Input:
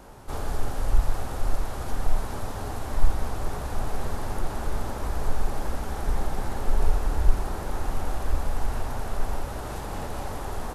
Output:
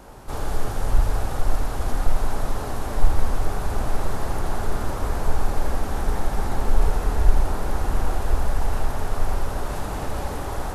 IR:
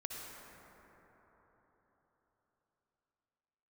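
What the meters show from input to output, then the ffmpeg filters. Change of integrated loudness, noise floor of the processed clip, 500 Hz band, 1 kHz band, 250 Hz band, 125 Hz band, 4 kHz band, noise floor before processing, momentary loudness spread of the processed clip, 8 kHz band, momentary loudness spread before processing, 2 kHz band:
+4.5 dB, -30 dBFS, +4.5 dB, +4.0 dB, +4.0 dB, +4.0 dB, +3.5 dB, -34 dBFS, 5 LU, +3.5 dB, 6 LU, +4.5 dB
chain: -filter_complex "[0:a]asplit=2[a][b];[1:a]atrim=start_sample=2205,adelay=79[c];[b][c]afir=irnorm=-1:irlink=0,volume=-3dB[d];[a][d]amix=inputs=2:normalize=0,volume=2.5dB"

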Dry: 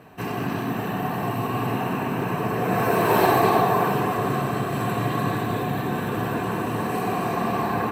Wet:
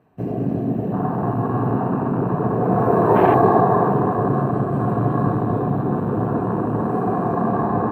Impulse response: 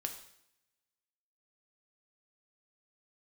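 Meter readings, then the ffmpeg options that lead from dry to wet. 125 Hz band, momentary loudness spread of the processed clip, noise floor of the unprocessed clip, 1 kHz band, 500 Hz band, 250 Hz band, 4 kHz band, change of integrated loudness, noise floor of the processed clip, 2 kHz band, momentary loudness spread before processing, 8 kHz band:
+6.0 dB, 8 LU, -28 dBFS, +2.5 dB, +5.0 dB, +6.0 dB, under -15 dB, +4.0 dB, -25 dBFS, -5.0 dB, 8 LU, under -20 dB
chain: -filter_complex "[0:a]afwtdn=0.0631,tiltshelf=f=1.4k:g=5,asplit=2[a][b];[1:a]atrim=start_sample=2205,lowpass=2.3k[c];[b][c]afir=irnorm=-1:irlink=0,volume=-14dB[d];[a][d]amix=inputs=2:normalize=0"

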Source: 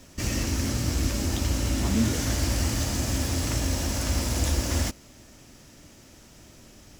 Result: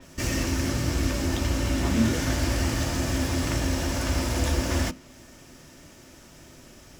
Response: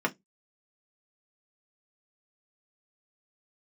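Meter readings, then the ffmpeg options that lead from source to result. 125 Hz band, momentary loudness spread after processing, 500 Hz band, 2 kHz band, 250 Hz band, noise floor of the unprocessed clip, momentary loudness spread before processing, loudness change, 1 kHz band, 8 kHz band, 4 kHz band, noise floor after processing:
0.0 dB, 3 LU, +3.5 dB, +3.5 dB, +2.0 dB, -52 dBFS, 3 LU, +0.5 dB, +3.0 dB, -2.5 dB, -0.5 dB, -50 dBFS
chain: -filter_complex "[0:a]asplit=2[a][b];[1:a]atrim=start_sample=2205[c];[b][c]afir=irnorm=-1:irlink=0,volume=-14.5dB[d];[a][d]amix=inputs=2:normalize=0,adynamicequalizer=threshold=0.00501:dfrequency=5100:dqfactor=0.7:tfrequency=5100:tqfactor=0.7:attack=5:release=100:ratio=0.375:range=2.5:mode=cutabove:tftype=highshelf"

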